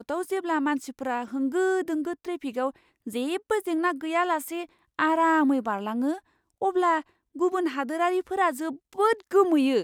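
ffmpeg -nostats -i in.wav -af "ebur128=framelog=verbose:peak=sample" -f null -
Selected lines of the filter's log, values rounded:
Integrated loudness:
  I:         -26.3 LUFS
  Threshold: -36.6 LUFS
Loudness range:
  LRA:         3.1 LU
  Threshold: -46.9 LUFS
  LRA low:   -28.8 LUFS
  LRA high:  -25.7 LUFS
Sample peak:
  Peak:       -8.9 dBFS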